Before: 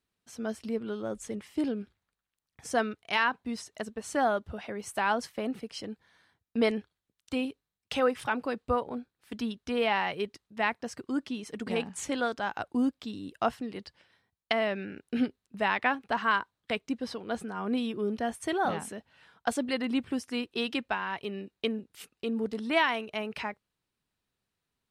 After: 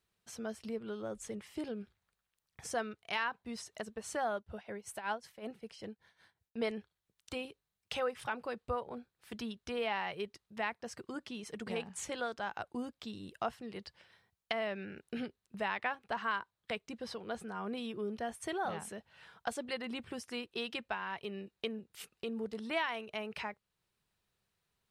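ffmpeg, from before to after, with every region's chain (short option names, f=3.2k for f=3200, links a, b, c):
-filter_complex "[0:a]asettb=1/sr,asplit=3[a][b][c];[a]atrim=end=4.364[d];[b]atrim=start=4.36:end=6.64,asetpts=PTS-STARTPTS,afade=t=in:d=0.004:c=qsin,afade=t=out:st=2.276:d=0.004:c=qsin,bandreject=f=1.2k:w=13,tremolo=f=5.3:d=0.84[e];[c]atrim=start=6.636[f];[d][e]acrossfade=d=0.004:c1=hsin:c2=qsin[g];[g][f]acrossfade=d=0.004:c1=qsin:c2=hsin,equalizer=f=270:w=5.8:g=-13.5,acompressor=threshold=-52dB:ratio=1.5,volume=2dB"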